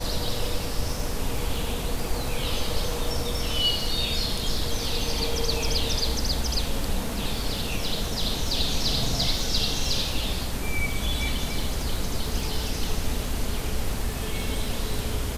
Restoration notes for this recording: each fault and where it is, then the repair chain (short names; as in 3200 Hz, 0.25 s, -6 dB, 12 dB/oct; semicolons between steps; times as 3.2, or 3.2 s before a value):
crackle 27/s -30 dBFS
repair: de-click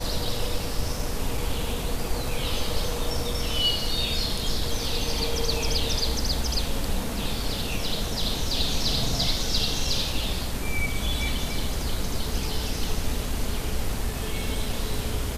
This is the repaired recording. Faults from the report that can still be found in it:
none